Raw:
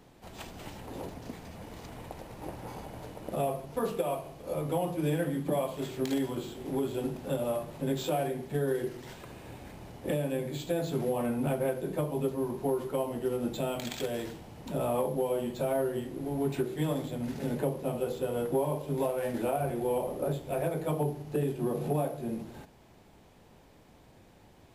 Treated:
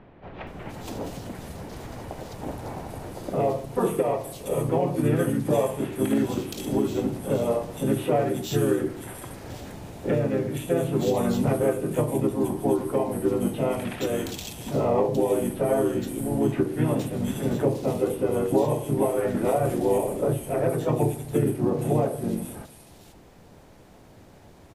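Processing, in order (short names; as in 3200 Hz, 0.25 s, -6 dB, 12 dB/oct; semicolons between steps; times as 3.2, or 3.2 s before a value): harmoniser -4 st -2 dB; bands offset in time lows, highs 0.47 s, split 2800 Hz; gain +5 dB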